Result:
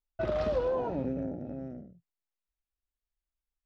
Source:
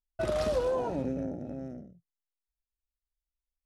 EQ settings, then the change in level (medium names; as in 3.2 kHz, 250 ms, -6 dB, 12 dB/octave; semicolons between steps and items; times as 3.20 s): distance through air 210 m; 0.0 dB